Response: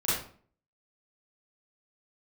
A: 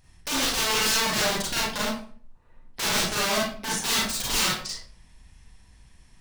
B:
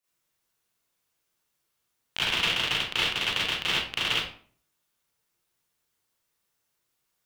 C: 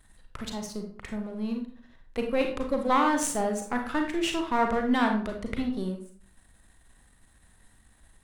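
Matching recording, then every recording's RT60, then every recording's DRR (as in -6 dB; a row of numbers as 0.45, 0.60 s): B; 0.50, 0.50, 0.50 s; -5.5, -11.0, 3.0 dB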